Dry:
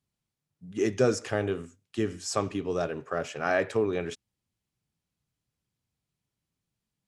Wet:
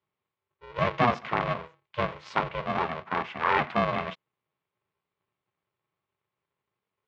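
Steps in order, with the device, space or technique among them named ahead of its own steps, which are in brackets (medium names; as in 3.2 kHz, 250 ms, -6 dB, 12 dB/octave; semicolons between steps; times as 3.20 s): ring modulator pedal into a guitar cabinet (polarity switched at an audio rate 240 Hz; cabinet simulation 110–3500 Hz, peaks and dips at 320 Hz -9 dB, 1.1 kHz +9 dB, 2.2 kHz +4 dB)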